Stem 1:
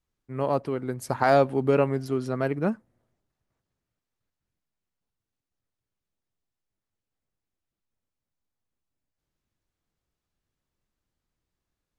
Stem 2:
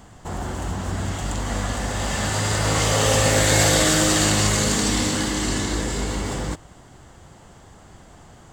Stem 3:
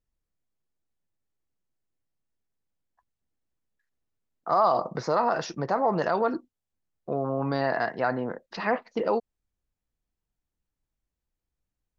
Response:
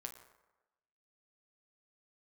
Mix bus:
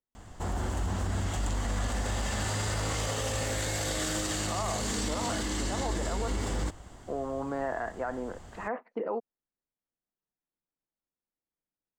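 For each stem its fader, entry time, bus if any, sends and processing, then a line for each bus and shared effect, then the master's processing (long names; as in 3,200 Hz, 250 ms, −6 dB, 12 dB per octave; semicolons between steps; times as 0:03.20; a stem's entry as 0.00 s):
muted
−4.0 dB, 0.15 s, no send, parametric band 140 Hz −8 dB 0.41 octaves; brickwall limiter −14 dBFS, peak gain reduction 8.5 dB
−5.0 dB, 0.00 s, no send, low-pass filter 4,400 Hz; three-way crossover with the lows and the highs turned down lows −24 dB, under 180 Hz, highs −22 dB, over 2,300 Hz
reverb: not used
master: low-shelf EQ 89 Hz +7.5 dB; brickwall limiter −22.5 dBFS, peak gain reduction 11 dB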